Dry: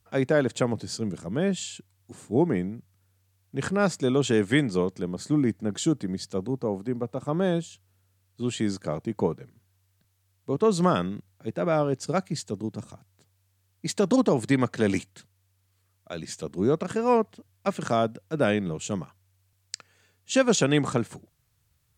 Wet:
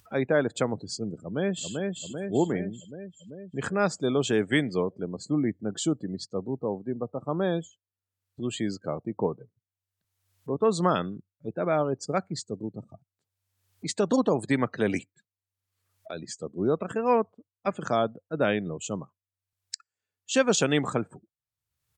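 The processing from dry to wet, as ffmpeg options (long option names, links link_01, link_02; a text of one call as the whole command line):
ffmpeg -i in.wav -filter_complex "[0:a]asplit=2[link_01][link_02];[link_02]afade=type=in:start_time=1.18:duration=0.01,afade=type=out:start_time=1.74:duration=0.01,aecho=0:1:390|780|1170|1560|1950|2340|2730|3120|3510|3900:0.707946|0.460165|0.299107|0.19442|0.126373|0.0821423|0.0533925|0.0347051|0.0225583|0.0146629[link_03];[link_01][link_03]amix=inputs=2:normalize=0,lowshelf=frequency=270:gain=-5.5,afftdn=noise_reduction=33:noise_floor=-41,acompressor=mode=upward:threshold=-35dB:ratio=2.5" out.wav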